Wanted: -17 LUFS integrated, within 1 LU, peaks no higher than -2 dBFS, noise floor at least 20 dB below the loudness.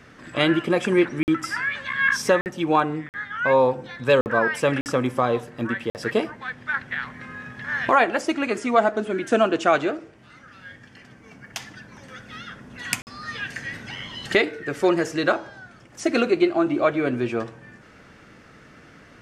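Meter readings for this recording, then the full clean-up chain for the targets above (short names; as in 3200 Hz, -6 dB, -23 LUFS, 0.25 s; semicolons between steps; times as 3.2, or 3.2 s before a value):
dropouts 7; longest dropout 49 ms; loudness -23.0 LUFS; peak -4.0 dBFS; loudness target -17.0 LUFS
-> interpolate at 1.23/2.41/3.09/4.21/4.81/5.9/13.02, 49 ms; gain +6 dB; limiter -2 dBFS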